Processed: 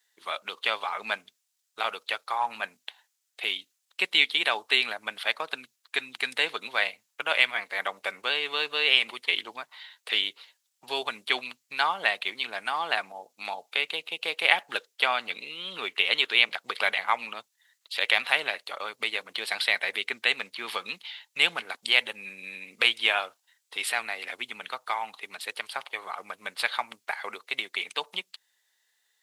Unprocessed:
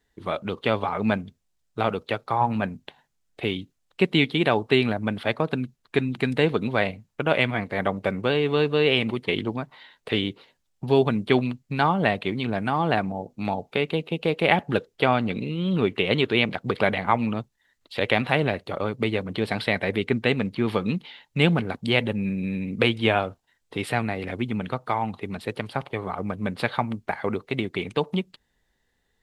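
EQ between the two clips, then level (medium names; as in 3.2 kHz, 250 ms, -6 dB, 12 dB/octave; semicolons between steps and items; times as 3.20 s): high-pass 960 Hz 12 dB/octave; treble shelf 2.9 kHz +11.5 dB; -2.0 dB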